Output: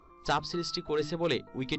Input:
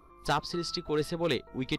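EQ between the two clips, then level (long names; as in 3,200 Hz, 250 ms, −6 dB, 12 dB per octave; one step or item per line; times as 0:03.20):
linear-phase brick-wall low-pass 7,900 Hz
mains-hum notches 50/100/150/200/250/300 Hz
0.0 dB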